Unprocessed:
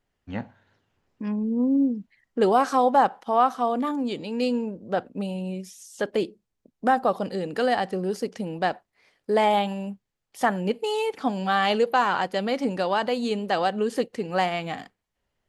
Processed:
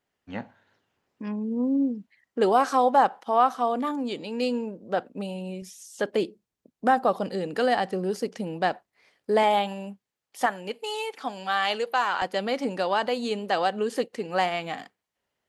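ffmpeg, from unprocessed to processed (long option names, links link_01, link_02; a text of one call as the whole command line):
ffmpeg -i in.wav -af "asetnsamples=nb_out_samples=441:pad=0,asendcmd='5.62 highpass f 110;9.43 highpass f 310;10.46 highpass f 960;12.22 highpass f 280',highpass=frequency=250:poles=1" out.wav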